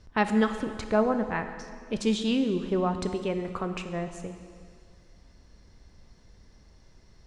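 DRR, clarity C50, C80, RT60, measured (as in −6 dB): 7.5 dB, 9.0 dB, 9.5 dB, 2.1 s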